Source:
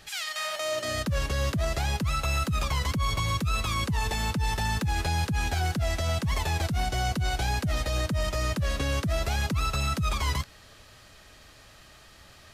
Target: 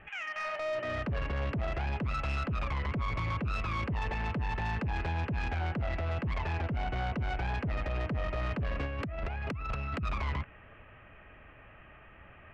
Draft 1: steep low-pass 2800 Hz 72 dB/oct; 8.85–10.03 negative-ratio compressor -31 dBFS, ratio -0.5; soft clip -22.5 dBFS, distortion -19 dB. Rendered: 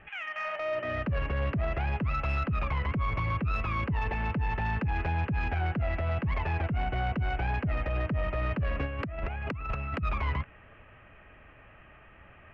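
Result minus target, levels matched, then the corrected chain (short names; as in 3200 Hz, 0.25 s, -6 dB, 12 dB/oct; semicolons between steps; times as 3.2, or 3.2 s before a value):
soft clip: distortion -8 dB
steep low-pass 2800 Hz 72 dB/oct; 8.85–10.03 negative-ratio compressor -31 dBFS, ratio -0.5; soft clip -29 dBFS, distortion -11 dB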